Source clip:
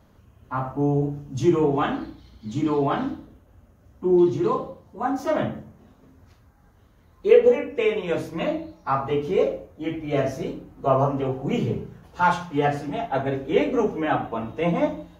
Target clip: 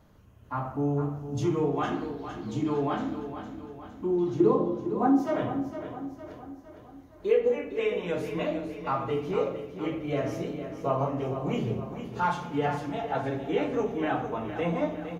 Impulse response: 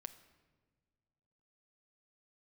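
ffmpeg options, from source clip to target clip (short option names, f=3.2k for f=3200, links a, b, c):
-filter_complex "[0:a]asettb=1/sr,asplit=3[a][b][c];[a]atrim=end=4.404[d];[b]atrim=start=4.4:end=5.23,asetpts=PTS-STARTPTS,afade=t=in:d=0.004:c=qsin,afade=t=out:st=0.826:d=0.004:c=qsin,equalizer=f=280:t=o:w=2.8:g=14.5[e];[c]atrim=start=5.226[f];[d][e]acrossfade=d=0.004:c1=hsin:c2=qsin[g];[g][f]acrossfade=d=0.004:c1=qsin:c2=hsin,acompressor=threshold=-29dB:ratio=1.5,aecho=1:1:459|918|1377|1836|2295|2754:0.316|0.161|0.0823|0.0419|0.0214|0.0109[h];[1:a]atrim=start_sample=2205[i];[h][i]afir=irnorm=-1:irlink=0,volume=2.5dB"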